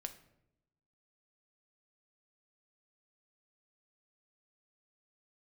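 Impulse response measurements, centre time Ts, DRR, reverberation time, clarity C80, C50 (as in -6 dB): 9 ms, 7.0 dB, 0.85 s, 16.0 dB, 13.0 dB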